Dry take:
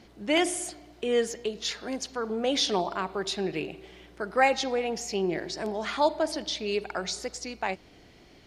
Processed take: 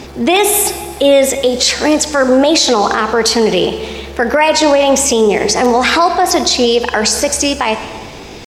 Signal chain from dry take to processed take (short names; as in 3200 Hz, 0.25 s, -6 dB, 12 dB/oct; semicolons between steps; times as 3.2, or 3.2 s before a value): pitch shift +2.5 st; compressor 2:1, threshold -29 dBFS, peak gain reduction 7 dB; on a send at -13.5 dB: reverb RT60 1.6 s, pre-delay 23 ms; on the sum: maximiser +24.5 dB; gain -1 dB